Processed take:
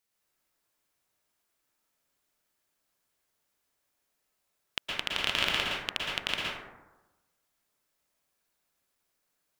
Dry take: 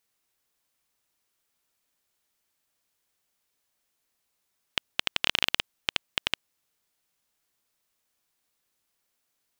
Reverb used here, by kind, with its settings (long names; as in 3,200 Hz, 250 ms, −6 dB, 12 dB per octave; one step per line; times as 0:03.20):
dense smooth reverb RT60 1.1 s, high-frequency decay 0.35×, pre-delay 105 ms, DRR −4.5 dB
level −5 dB